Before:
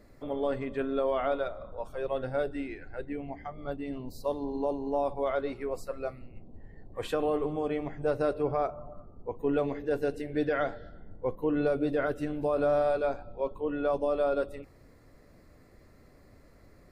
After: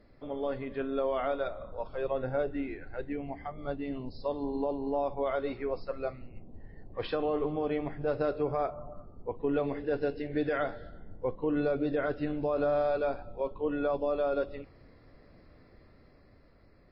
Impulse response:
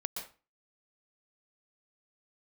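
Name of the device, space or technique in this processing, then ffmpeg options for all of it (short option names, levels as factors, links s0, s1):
low-bitrate web radio: -filter_complex "[0:a]asettb=1/sr,asplit=3[s0][s1][s2];[s0]atrim=end=2.114[s3];[s1]atrim=start=2.11:end=2.84,asetpts=PTS-STARTPTS,afade=t=in:d=0.004:c=qsin,afade=t=out:st=0.726:d=0.004:c=qsin,aemphasis=mode=reproduction:type=75fm[s4];[s2]atrim=start=2.836[s5];[s3][s4]acrossfade=d=0.004:c1=hsin:c2=qsin[s6];[s6][s5]acrossfade=d=0.004:c1=qsin:c2=hsin,dynaudnorm=f=130:g=17:m=1.58,alimiter=limit=0.133:level=0:latency=1:release=150,volume=0.708" -ar 12000 -c:a libmp3lame -b:a 24k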